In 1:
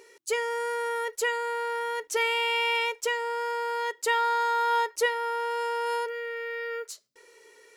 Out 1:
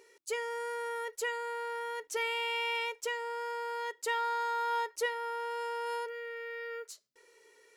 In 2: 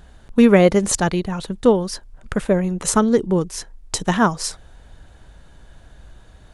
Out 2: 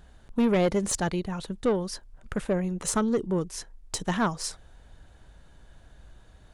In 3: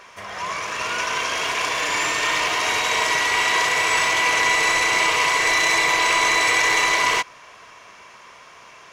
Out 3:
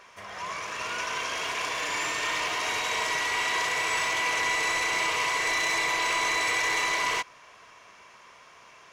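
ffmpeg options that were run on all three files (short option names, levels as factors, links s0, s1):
-af "asoftclip=type=tanh:threshold=0.299,volume=0.447"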